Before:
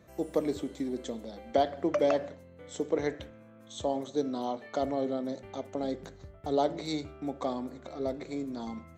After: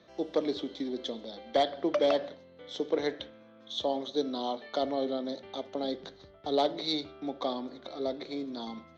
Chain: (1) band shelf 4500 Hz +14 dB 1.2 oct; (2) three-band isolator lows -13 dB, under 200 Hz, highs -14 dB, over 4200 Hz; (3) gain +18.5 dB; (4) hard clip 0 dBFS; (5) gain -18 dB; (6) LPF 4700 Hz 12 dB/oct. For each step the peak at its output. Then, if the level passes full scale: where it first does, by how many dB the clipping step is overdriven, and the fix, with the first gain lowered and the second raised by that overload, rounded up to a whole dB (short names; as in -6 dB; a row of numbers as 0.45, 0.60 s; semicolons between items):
-11.5, -12.5, +6.0, 0.0, -18.0, -17.5 dBFS; step 3, 6.0 dB; step 3 +12.5 dB, step 5 -12 dB